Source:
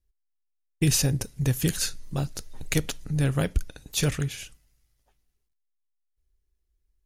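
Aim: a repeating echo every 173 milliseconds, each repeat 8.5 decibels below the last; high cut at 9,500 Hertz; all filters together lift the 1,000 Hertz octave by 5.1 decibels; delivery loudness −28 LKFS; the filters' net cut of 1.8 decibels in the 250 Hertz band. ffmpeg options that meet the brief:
ffmpeg -i in.wav -af "lowpass=9500,equalizer=frequency=250:width_type=o:gain=-4,equalizer=frequency=1000:width_type=o:gain=7.5,aecho=1:1:173|346|519|692:0.376|0.143|0.0543|0.0206,volume=-0.5dB" out.wav

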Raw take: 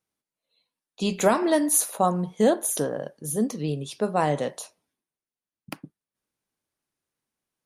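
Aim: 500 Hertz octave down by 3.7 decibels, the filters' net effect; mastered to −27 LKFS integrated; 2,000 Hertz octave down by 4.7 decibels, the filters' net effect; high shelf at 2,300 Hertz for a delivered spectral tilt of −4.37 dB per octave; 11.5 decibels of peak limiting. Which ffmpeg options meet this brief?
ffmpeg -i in.wav -af "equalizer=frequency=500:width_type=o:gain=-4.5,equalizer=frequency=2000:width_type=o:gain=-8,highshelf=frequency=2300:gain=4,volume=1dB,alimiter=limit=-15dB:level=0:latency=1" out.wav

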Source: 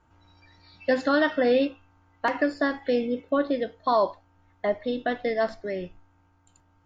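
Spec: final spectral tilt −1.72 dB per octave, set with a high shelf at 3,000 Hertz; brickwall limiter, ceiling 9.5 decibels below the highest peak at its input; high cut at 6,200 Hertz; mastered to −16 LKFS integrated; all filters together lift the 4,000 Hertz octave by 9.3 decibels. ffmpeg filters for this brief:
ffmpeg -i in.wav -af "lowpass=6200,highshelf=frequency=3000:gain=4.5,equalizer=frequency=4000:width_type=o:gain=8.5,volume=14.5dB,alimiter=limit=-4.5dB:level=0:latency=1" out.wav

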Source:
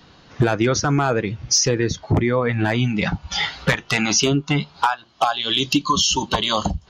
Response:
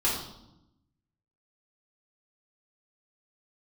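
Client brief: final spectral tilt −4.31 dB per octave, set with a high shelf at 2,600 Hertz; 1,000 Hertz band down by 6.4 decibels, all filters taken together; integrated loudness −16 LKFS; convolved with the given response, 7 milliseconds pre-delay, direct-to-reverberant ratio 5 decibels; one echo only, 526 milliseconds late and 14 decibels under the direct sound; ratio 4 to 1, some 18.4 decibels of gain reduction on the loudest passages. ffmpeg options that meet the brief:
-filter_complex "[0:a]equalizer=frequency=1000:width_type=o:gain=-7.5,highshelf=frequency=2600:gain=-5.5,acompressor=threshold=-37dB:ratio=4,aecho=1:1:526:0.2,asplit=2[link_01][link_02];[1:a]atrim=start_sample=2205,adelay=7[link_03];[link_02][link_03]afir=irnorm=-1:irlink=0,volume=-15.5dB[link_04];[link_01][link_04]amix=inputs=2:normalize=0,volume=20dB"

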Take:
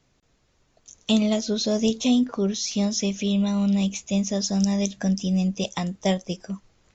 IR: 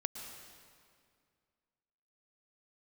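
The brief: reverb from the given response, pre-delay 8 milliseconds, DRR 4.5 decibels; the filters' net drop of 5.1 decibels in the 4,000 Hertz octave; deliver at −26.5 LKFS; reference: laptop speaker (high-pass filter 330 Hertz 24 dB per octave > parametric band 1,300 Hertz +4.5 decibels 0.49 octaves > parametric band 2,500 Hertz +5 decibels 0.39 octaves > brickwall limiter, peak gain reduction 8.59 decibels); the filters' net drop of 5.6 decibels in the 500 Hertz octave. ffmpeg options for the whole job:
-filter_complex "[0:a]equalizer=frequency=500:width_type=o:gain=-7,equalizer=frequency=4000:width_type=o:gain=-8,asplit=2[link_01][link_02];[1:a]atrim=start_sample=2205,adelay=8[link_03];[link_02][link_03]afir=irnorm=-1:irlink=0,volume=-4.5dB[link_04];[link_01][link_04]amix=inputs=2:normalize=0,highpass=frequency=330:width=0.5412,highpass=frequency=330:width=1.3066,equalizer=frequency=1300:width_type=o:width=0.49:gain=4.5,equalizer=frequency=2500:width_type=o:width=0.39:gain=5,volume=7dB,alimiter=limit=-15.5dB:level=0:latency=1"

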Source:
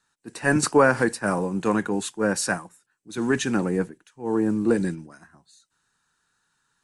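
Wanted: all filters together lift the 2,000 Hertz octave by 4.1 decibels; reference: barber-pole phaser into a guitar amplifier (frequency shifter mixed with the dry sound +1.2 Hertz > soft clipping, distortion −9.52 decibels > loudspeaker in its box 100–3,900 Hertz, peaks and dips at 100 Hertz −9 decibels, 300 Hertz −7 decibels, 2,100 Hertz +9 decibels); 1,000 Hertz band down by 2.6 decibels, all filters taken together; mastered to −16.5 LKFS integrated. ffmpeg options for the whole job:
ffmpeg -i in.wav -filter_complex "[0:a]equalizer=frequency=1000:width_type=o:gain=-6,equalizer=frequency=2000:width_type=o:gain=5.5,asplit=2[link_01][link_02];[link_02]afreqshift=1.2[link_03];[link_01][link_03]amix=inputs=2:normalize=1,asoftclip=threshold=-21.5dB,highpass=100,equalizer=frequency=100:width_type=q:width=4:gain=-9,equalizer=frequency=300:width_type=q:width=4:gain=-7,equalizer=frequency=2100:width_type=q:width=4:gain=9,lowpass=frequency=3900:width=0.5412,lowpass=frequency=3900:width=1.3066,volume=14.5dB" out.wav

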